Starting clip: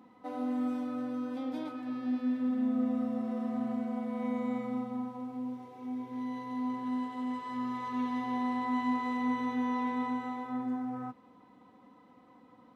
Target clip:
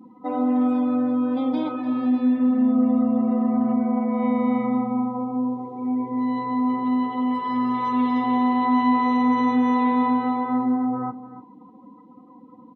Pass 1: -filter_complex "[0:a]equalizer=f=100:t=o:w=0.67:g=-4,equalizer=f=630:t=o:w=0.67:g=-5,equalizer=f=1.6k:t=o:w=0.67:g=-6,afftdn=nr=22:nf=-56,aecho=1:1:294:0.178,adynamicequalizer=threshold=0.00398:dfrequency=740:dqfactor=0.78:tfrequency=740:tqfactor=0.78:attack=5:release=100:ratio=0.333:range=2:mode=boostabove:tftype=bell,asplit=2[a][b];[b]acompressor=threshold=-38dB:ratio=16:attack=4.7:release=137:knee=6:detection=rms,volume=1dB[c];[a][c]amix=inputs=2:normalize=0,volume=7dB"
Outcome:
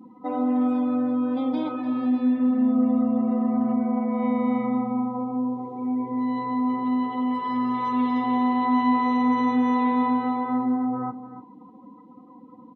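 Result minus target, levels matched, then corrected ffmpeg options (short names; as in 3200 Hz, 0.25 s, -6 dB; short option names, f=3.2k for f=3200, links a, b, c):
compressor: peak gain reduction +6 dB
-filter_complex "[0:a]equalizer=f=100:t=o:w=0.67:g=-4,equalizer=f=630:t=o:w=0.67:g=-5,equalizer=f=1.6k:t=o:w=0.67:g=-6,afftdn=nr=22:nf=-56,aecho=1:1:294:0.178,adynamicequalizer=threshold=0.00398:dfrequency=740:dqfactor=0.78:tfrequency=740:tqfactor=0.78:attack=5:release=100:ratio=0.333:range=2:mode=boostabove:tftype=bell,asplit=2[a][b];[b]acompressor=threshold=-31.5dB:ratio=16:attack=4.7:release=137:knee=6:detection=rms,volume=1dB[c];[a][c]amix=inputs=2:normalize=0,volume=7dB"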